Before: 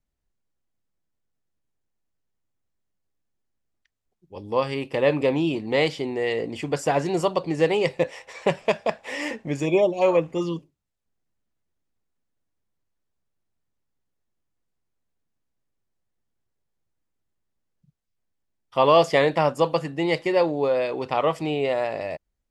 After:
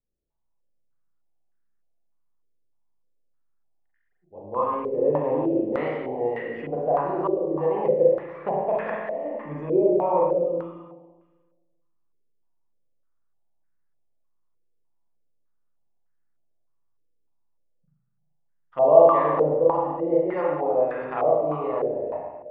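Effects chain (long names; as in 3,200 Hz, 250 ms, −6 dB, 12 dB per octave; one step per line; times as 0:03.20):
spring reverb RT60 1.4 s, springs 33/39/47 ms, chirp 40 ms, DRR −4.5 dB
low-pass on a step sequencer 3.3 Hz 460–1,600 Hz
level −11.5 dB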